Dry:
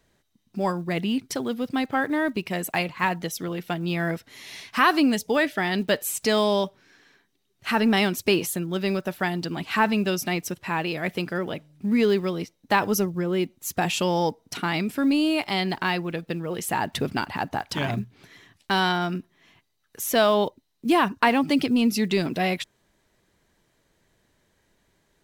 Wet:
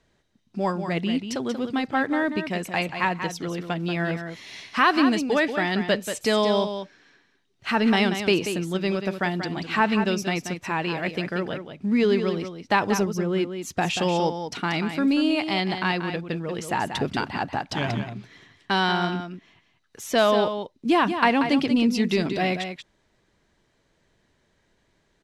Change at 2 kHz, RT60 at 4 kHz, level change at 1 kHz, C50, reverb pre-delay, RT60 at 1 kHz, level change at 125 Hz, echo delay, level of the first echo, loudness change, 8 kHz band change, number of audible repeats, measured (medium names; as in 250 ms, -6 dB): +0.5 dB, no reverb, +0.5 dB, no reverb, no reverb, no reverb, +0.5 dB, 185 ms, -8.5 dB, +0.5 dB, -4.0 dB, 1